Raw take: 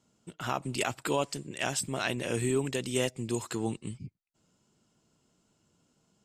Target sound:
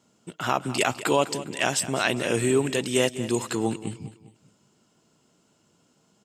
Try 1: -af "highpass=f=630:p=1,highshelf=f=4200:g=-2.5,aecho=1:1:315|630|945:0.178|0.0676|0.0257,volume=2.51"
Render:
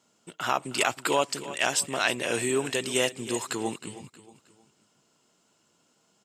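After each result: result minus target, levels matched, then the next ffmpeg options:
echo 112 ms late; 250 Hz band -4.0 dB
-af "highpass=f=630:p=1,highshelf=f=4200:g=-2.5,aecho=1:1:203|406|609:0.178|0.0676|0.0257,volume=2.51"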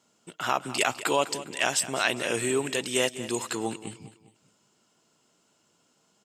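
250 Hz band -4.0 dB
-af "highpass=f=180:p=1,highshelf=f=4200:g=-2.5,aecho=1:1:203|406|609:0.178|0.0676|0.0257,volume=2.51"

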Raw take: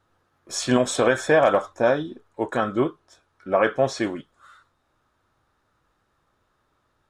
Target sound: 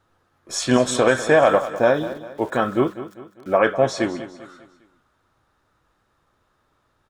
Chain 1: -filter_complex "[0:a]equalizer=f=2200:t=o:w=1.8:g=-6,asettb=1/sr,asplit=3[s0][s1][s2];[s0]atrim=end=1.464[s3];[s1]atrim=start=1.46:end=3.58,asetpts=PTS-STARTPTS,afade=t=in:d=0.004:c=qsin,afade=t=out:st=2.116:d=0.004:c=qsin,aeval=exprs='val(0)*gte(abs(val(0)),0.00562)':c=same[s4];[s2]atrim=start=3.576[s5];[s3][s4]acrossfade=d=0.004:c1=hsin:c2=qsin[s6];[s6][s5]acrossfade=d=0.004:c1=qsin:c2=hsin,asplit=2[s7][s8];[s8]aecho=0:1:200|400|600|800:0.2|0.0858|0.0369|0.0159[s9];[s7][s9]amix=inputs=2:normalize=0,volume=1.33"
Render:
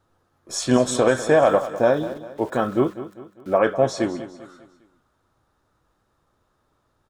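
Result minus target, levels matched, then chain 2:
2 kHz band -4.0 dB
-filter_complex "[0:a]asettb=1/sr,asplit=3[s0][s1][s2];[s0]atrim=end=1.464[s3];[s1]atrim=start=1.46:end=3.58,asetpts=PTS-STARTPTS,afade=t=in:d=0.004:c=qsin,afade=t=out:st=2.116:d=0.004:c=qsin,aeval=exprs='val(0)*gte(abs(val(0)),0.00562)':c=same[s4];[s2]atrim=start=3.576[s5];[s3][s4]acrossfade=d=0.004:c1=hsin:c2=qsin[s6];[s6][s5]acrossfade=d=0.004:c1=qsin:c2=hsin,asplit=2[s7][s8];[s8]aecho=0:1:200|400|600|800:0.2|0.0858|0.0369|0.0159[s9];[s7][s9]amix=inputs=2:normalize=0,volume=1.33"

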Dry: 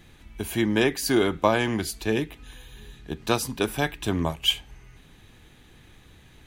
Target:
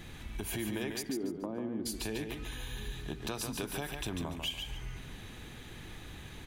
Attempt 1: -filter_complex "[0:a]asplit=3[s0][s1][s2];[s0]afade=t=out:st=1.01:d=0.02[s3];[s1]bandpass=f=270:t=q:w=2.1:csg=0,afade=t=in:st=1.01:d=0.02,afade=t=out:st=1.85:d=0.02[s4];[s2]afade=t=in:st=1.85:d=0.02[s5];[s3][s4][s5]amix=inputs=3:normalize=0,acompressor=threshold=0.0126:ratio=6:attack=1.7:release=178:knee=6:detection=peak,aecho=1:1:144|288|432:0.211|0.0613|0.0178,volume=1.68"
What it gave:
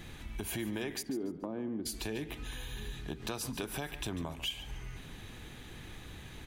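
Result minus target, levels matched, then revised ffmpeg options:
echo-to-direct -8 dB
-filter_complex "[0:a]asplit=3[s0][s1][s2];[s0]afade=t=out:st=1.01:d=0.02[s3];[s1]bandpass=f=270:t=q:w=2.1:csg=0,afade=t=in:st=1.01:d=0.02,afade=t=out:st=1.85:d=0.02[s4];[s2]afade=t=in:st=1.85:d=0.02[s5];[s3][s4][s5]amix=inputs=3:normalize=0,acompressor=threshold=0.0126:ratio=6:attack=1.7:release=178:knee=6:detection=peak,aecho=1:1:144|288|432|576:0.531|0.154|0.0446|0.0129,volume=1.68"

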